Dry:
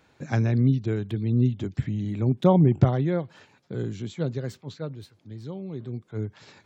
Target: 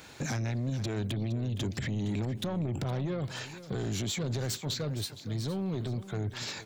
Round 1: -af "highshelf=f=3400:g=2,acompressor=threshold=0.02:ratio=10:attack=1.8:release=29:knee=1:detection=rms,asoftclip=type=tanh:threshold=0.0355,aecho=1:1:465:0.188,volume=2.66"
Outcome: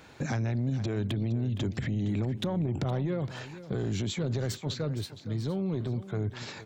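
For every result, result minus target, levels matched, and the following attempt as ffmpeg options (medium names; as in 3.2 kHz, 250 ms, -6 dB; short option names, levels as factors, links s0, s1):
8 kHz band -7.5 dB; saturation: distortion -10 dB
-af "highshelf=f=3400:g=13,acompressor=threshold=0.02:ratio=10:attack=1.8:release=29:knee=1:detection=rms,asoftclip=type=tanh:threshold=0.0355,aecho=1:1:465:0.188,volume=2.66"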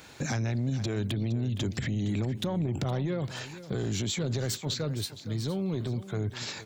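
saturation: distortion -10 dB
-af "highshelf=f=3400:g=13,acompressor=threshold=0.02:ratio=10:attack=1.8:release=29:knee=1:detection=rms,asoftclip=type=tanh:threshold=0.0158,aecho=1:1:465:0.188,volume=2.66"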